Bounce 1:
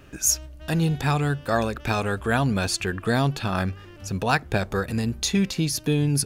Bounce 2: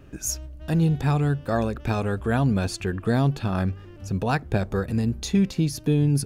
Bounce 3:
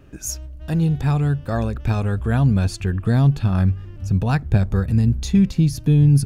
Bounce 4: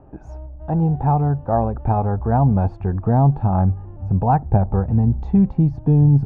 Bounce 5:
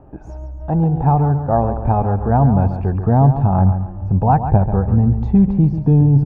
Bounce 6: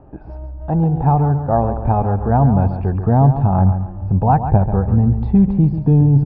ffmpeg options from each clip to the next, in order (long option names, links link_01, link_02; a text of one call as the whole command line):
ffmpeg -i in.wav -af "tiltshelf=frequency=750:gain=5,volume=-2.5dB" out.wav
ffmpeg -i in.wav -af "asubboost=boost=4:cutoff=190" out.wav
ffmpeg -i in.wav -af "lowpass=frequency=830:width_type=q:width=5.5" out.wav
ffmpeg -i in.wav -af "aecho=1:1:139|278|417|556:0.335|0.124|0.0459|0.017,volume=2.5dB" out.wav
ffmpeg -i in.wav -af "aresample=11025,aresample=44100" out.wav